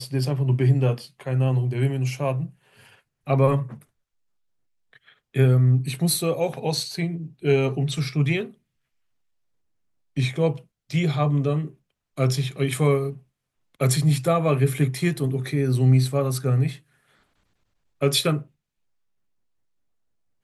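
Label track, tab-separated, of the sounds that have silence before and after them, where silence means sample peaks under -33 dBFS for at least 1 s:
5.350000	8.460000	sound
10.170000	16.750000	sound
18.020000	18.420000	sound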